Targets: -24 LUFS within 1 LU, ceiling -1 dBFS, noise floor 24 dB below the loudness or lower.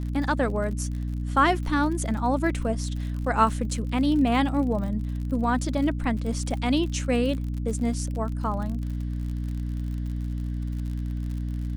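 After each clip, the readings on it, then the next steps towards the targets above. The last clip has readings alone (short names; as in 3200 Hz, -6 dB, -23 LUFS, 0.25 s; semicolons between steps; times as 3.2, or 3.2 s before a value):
ticks 51/s; hum 60 Hz; harmonics up to 300 Hz; hum level -27 dBFS; loudness -26.5 LUFS; peak -7.5 dBFS; loudness target -24.0 LUFS
-> de-click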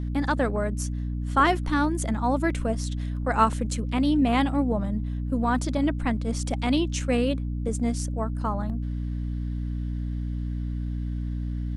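ticks 0.34/s; hum 60 Hz; harmonics up to 300 Hz; hum level -27 dBFS
-> notches 60/120/180/240/300 Hz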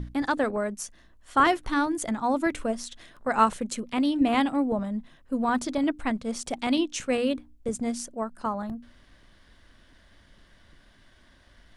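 hum none; loudness -27.5 LUFS; peak -8.0 dBFS; loudness target -24.0 LUFS
-> gain +3.5 dB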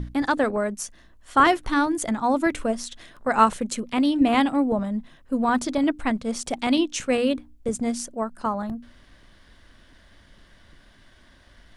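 loudness -24.0 LUFS; peak -4.5 dBFS; noise floor -54 dBFS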